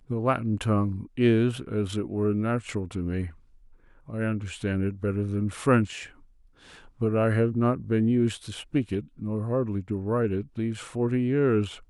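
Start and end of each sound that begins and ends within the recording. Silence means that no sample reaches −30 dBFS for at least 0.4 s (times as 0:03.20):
0:04.10–0:06.03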